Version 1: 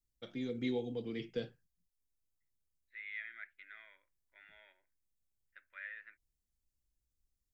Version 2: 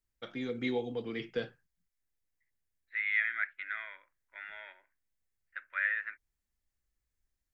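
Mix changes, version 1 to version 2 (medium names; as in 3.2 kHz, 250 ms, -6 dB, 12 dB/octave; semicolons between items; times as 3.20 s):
second voice +6.0 dB; master: add peaking EQ 1.3 kHz +11.5 dB 2.1 oct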